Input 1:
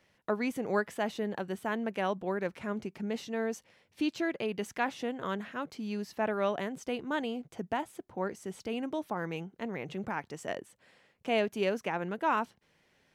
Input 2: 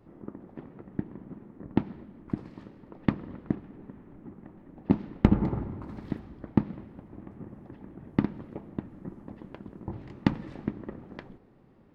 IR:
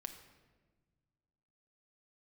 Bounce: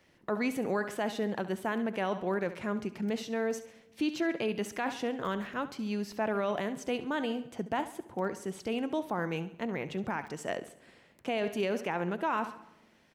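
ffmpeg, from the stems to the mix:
-filter_complex "[0:a]volume=0.5dB,asplit=4[a][b][c][d];[b]volume=-8dB[e];[c]volume=-13dB[f];[1:a]aeval=exprs='(mod(10*val(0)+1,2)-1)/10':c=same,volume=-18.5dB[g];[d]apad=whole_len=526811[h];[g][h]sidechaincompress=threshold=-38dB:ratio=8:attack=6.5:release=1360[i];[2:a]atrim=start_sample=2205[j];[e][j]afir=irnorm=-1:irlink=0[k];[f]aecho=0:1:69|138|207|276|345|414:1|0.43|0.185|0.0795|0.0342|0.0147[l];[a][i][k][l]amix=inputs=4:normalize=0,alimiter=limit=-22dB:level=0:latency=1:release=14"

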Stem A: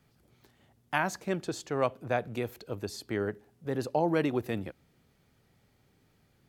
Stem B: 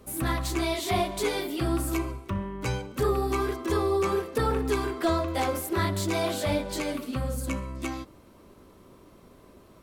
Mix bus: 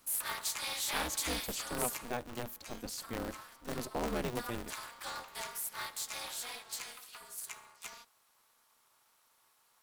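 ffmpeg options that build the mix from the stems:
-filter_complex "[0:a]highshelf=f=7.5k:g=8,volume=-9.5dB[a];[1:a]highpass=f=890:w=0.5412,highpass=f=890:w=1.3066,afade=t=out:st=1.76:d=0.6:silence=0.281838,afade=t=in:st=4.17:d=0.6:silence=0.446684[b];[a][b]amix=inputs=2:normalize=0,bass=f=250:g=5,treble=f=4k:g=9,aeval=exprs='val(0)*sgn(sin(2*PI*120*n/s))':c=same"

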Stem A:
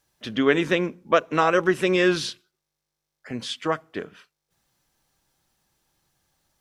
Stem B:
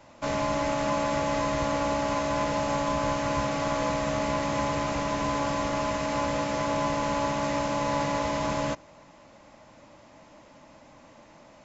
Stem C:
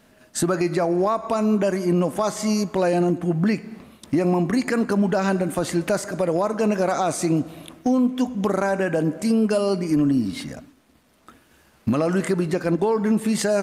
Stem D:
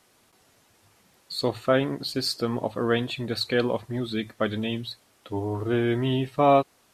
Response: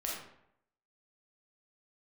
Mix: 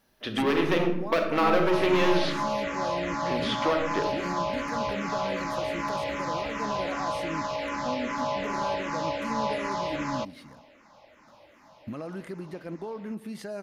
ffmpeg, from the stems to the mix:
-filter_complex "[0:a]acrossover=split=4000[a][b];[b]acompressor=threshold=-44dB:ratio=4:attack=1:release=60[c];[a][c]amix=inputs=2:normalize=0,lowshelf=f=420:g=10,volume=15.5dB,asoftclip=hard,volume=-15.5dB,volume=0dB,asplit=2[d][e];[e]volume=-8dB[f];[1:a]lowshelf=f=340:g=-9.5,asplit=2[g][h];[h]afreqshift=-2.6[i];[g][i]amix=inputs=2:normalize=1,adelay=1500,volume=2.5dB[j];[2:a]volume=-16dB[k];[3:a]acompressor=threshold=-29dB:ratio=6,adelay=2000,volume=-17.5dB[l];[d][l]amix=inputs=2:normalize=0,highpass=380,acompressor=threshold=-25dB:ratio=6,volume=0dB[m];[4:a]atrim=start_sample=2205[n];[f][n]afir=irnorm=-1:irlink=0[o];[j][k][m][o]amix=inputs=4:normalize=0,equalizer=f=7.6k:t=o:w=0.5:g=-11.5"

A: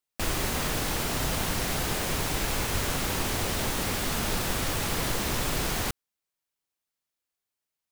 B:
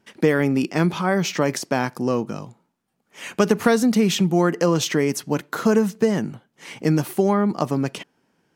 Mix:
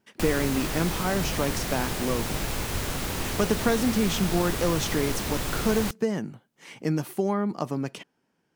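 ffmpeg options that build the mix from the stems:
-filter_complex "[0:a]acrossover=split=440[a][b];[b]acompressor=threshold=-30dB:ratio=6[c];[a][c]amix=inputs=2:normalize=0,volume=0dB[d];[1:a]volume=-7dB[e];[d][e]amix=inputs=2:normalize=0"

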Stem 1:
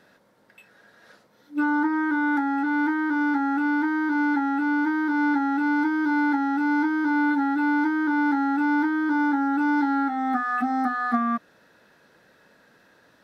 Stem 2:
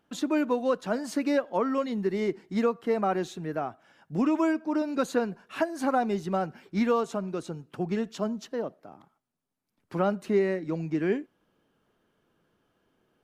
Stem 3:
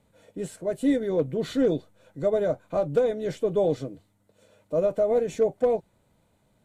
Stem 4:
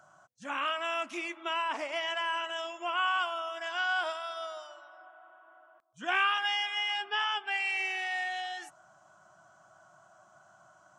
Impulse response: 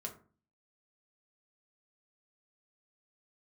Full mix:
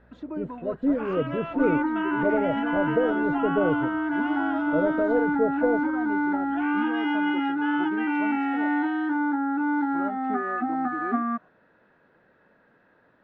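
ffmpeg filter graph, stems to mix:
-filter_complex "[0:a]volume=-2.5dB[a];[1:a]aecho=1:1:3.1:0.65,alimiter=limit=-19dB:level=0:latency=1,volume=-8.5dB[b];[2:a]tiltshelf=f=1.3k:g=7,aeval=exprs='val(0)+0.00316*(sin(2*PI*60*n/s)+sin(2*PI*2*60*n/s)/2+sin(2*PI*3*60*n/s)/3+sin(2*PI*4*60*n/s)/4+sin(2*PI*5*60*n/s)/5)':c=same,volume=-7dB[c];[3:a]alimiter=limit=-24dB:level=0:latency=1,adelay=500,volume=-0.5dB[d];[a][b][c][d]amix=inputs=4:normalize=0,lowpass=2.2k,aemphasis=mode=reproduction:type=50kf"

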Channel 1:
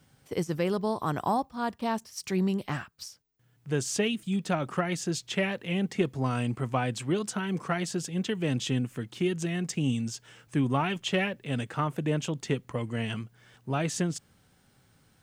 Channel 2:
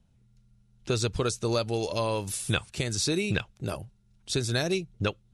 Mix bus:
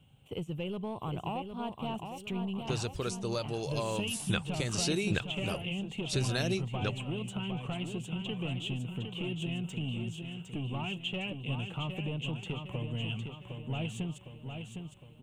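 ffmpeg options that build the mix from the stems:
-filter_complex "[0:a]asoftclip=type=tanh:threshold=-22.5dB,firequalizer=gain_entry='entry(110,0);entry(270,-8);entry(830,-6);entry(1800,-20);entry(2800,5);entry(4900,-28);entry(7300,-14)':delay=0.05:min_phase=1,acompressor=threshold=-36dB:ratio=6,volume=3dB,asplit=2[a][b];[b]volume=-6.5dB[c];[1:a]dynaudnorm=f=880:g=7:m=11.5dB,adelay=1800,volume=-8.5dB[d];[c]aecho=0:1:759|1518|2277|3036|3795|4554|5313:1|0.49|0.24|0.118|0.0576|0.0282|0.0138[e];[a][d][e]amix=inputs=3:normalize=0"

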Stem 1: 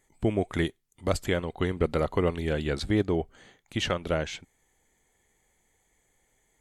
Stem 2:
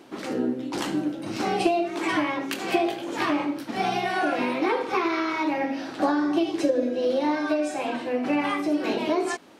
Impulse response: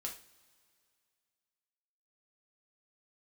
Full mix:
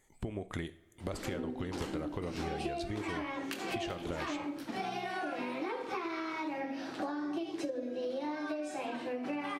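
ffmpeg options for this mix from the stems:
-filter_complex "[0:a]acompressor=threshold=-29dB:ratio=6,volume=-2.5dB,asplit=2[a][b];[b]volume=-5dB[c];[1:a]adelay=1000,volume=-5.5dB[d];[2:a]atrim=start_sample=2205[e];[c][e]afir=irnorm=-1:irlink=0[f];[a][d][f]amix=inputs=3:normalize=0,acompressor=threshold=-35dB:ratio=4"

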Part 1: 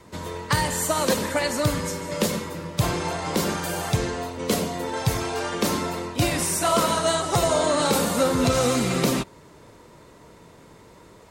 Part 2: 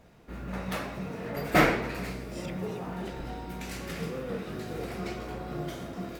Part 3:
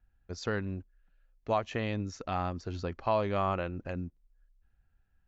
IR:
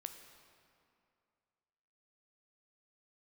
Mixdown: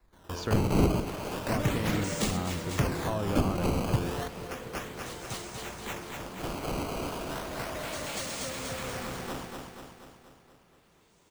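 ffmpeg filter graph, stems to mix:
-filter_complex "[0:a]aexciter=amount=7.4:drive=4.3:freq=6.6k,acrusher=samples=14:mix=1:aa=0.000001:lfo=1:lforange=22.4:lforate=0.34,volume=-5.5dB,asplit=2[a][b];[b]volume=-15dB[c];[1:a]flanger=delay=19.5:depth=5:speed=1.3,adelay=350,volume=-7dB[d];[2:a]volume=1.5dB,asplit=2[e][f];[f]apad=whole_len=498756[g];[a][g]sidechaingate=range=-21dB:threshold=-58dB:ratio=16:detection=peak[h];[c]aecho=0:1:240|480|720|960|1200|1440|1680|1920|2160:1|0.57|0.325|0.185|0.106|0.0602|0.0343|0.0195|0.0111[i];[h][d][e][i]amix=inputs=4:normalize=0,acrossover=split=370[j][k];[k]acompressor=threshold=-32dB:ratio=5[l];[j][l]amix=inputs=2:normalize=0"

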